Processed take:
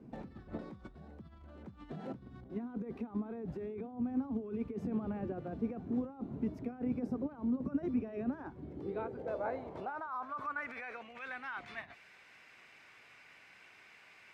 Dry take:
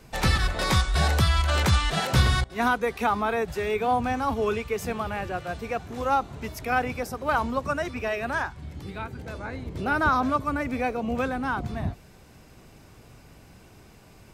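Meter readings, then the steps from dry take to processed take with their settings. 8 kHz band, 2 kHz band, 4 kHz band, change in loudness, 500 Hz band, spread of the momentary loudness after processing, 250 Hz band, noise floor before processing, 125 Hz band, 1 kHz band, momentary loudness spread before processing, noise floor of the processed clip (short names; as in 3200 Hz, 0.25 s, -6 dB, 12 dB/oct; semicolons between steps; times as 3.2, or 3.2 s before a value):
under -30 dB, -18.0 dB, under -30 dB, -13.5 dB, -13.0 dB, 21 LU, -5.5 dB, -52 dBFS, -20.0 dB, -19.0 dB, 12 LU, -60 dBFS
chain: negative-ratio compressor -32 dBFS, ratio -1; band-pass sweep 250 Hz -> 2100 Hz, 8.23–11.11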